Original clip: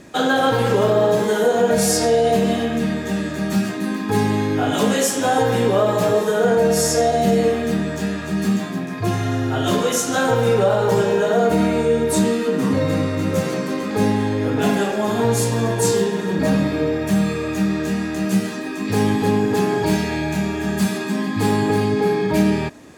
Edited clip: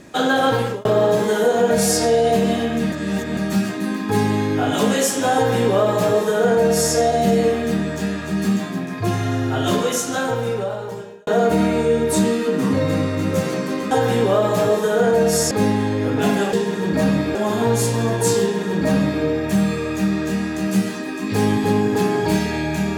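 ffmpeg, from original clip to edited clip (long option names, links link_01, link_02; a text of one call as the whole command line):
ffmpeg -i in.wav -filter_complex "[0:a]asplit=9[link_01][link_02][link_03][link_04][link_05][link_06][link_07][link_08][link_09];[link_01]atrim=end=0.85,asetpts=PTS-STARTPTS,afade=type=out:start_time=0.55:duration=0.3[link_10];[link_02]atrim=start=0.85:end=2.922,asetpts=PTS-STARTPTS,afade=type=in:duration=0.004:curve=hsin[link_11];[link_03]atrim=start=2.918:end=3.372,asetpts=PTS-STARTPTS,areverse[link_12];[link_04]atrim=start=3.368:end=11.27,asetpts=PTS-STARTPTS,afade=type=out:start_time=6.342:duration=1.56[link_13];[link_05]atrim=start=11.27:end=13.912,asetpts=PTS-STARTPTS,afade=type=in:duration=0.004:curve=hsin[link_14];[link_06]atrim=start=5.348:end=6.952[link_15];[link_07]atrim=start=13.908:end=14.932[link_16];[link_08]atrim=start=15.988:end=16.812[link_17];[link_09]atrim=start=14.928[link_18];[link_10][link_11]concat=n=2:v=0:a=1[link_19];[link_19][link_12]acrossfade=duration=0.004:curve1=hsin:curve2=hsin[link_20];[link_13][link_14]concat=n=2:v=0:a=1[link_21];[link_20][link_21]acrossfade=duration=0.004:curve1=hsin:curve2=hsin[link_22];[link_22][link_15]acrossfade=duration=0.004:curve1=hsin:curve2=hsin[link_23];[link_23][link_16]acrossfade=duration=0.004:curve1=hsin:curve2=hsin[link_24];[link_24][link_17]acrossfade=duration=0.004:curve1=hsin:curve2=hsin[link_25];[link_25][link_18]acrossfade=duration=0.004:curve1=hsin:curve2=hsin" out.wav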